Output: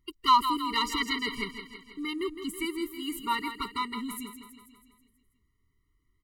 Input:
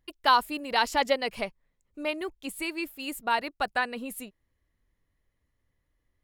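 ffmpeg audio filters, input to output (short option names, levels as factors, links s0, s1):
-af "aecho=1:1:162|324|486|648|810|972|1134:0.316|0.18|0.103|0.0586|0.0334|0.019|0.0108,asoftclip=type=tanh:threshold=0.282,afftfilt=real='re*eq(mod(floor(b*sr/1024/460),2),0)':imag='im*eq(mod(floor(b*sr/1024/460),2),0)':win_size=1024:overlap=0.75,volume=1.33"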